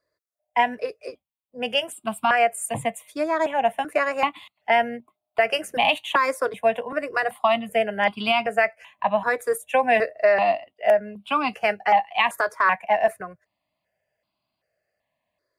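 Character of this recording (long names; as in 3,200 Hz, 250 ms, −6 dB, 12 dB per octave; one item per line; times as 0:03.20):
notches that jump at a steady rate 2.6 Hz 790–1,800 Hz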